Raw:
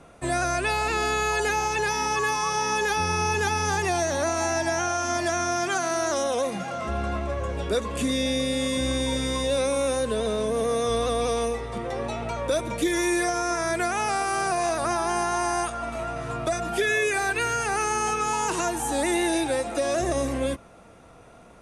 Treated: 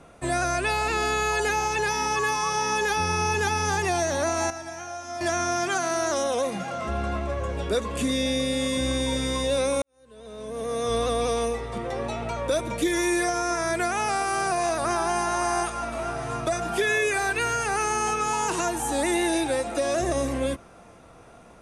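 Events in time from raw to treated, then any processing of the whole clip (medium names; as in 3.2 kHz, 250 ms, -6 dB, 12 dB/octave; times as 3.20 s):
4.50–5.21 s: feedback comb 63 Hz, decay 0.57 s, harmonics odd, mix 80%
9.82–10.96 s: fade in quadratic
14.30–15.27 s: echo throw 570 ms, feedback 75%, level -11.5 dB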